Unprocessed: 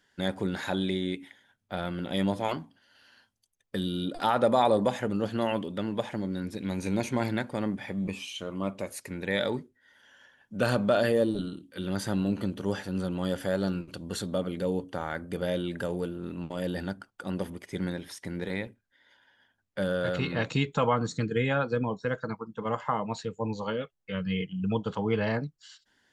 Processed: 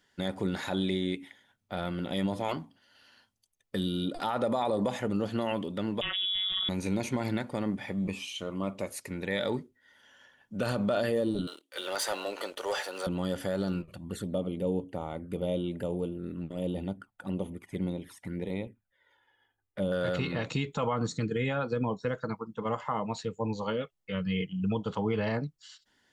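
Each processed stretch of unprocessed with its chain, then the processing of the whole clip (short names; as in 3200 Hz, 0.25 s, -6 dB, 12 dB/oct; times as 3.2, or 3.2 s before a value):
6.01–6.69 robotiser 191 Hz + inverted band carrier 3600 Hz + fast leveller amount 100%
11.47–13.07 HPF 520 Hz 24 dB/oct + sample leveller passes 2
13.82–19.92 bell 5100 Hz -11.5 dB 0.96 oct + envelope flanger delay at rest 2.5 ms, full sweep at -29.5 dBFS
whole clip: notch 1600 Hz, Q 12; limiter -19.5 dBFS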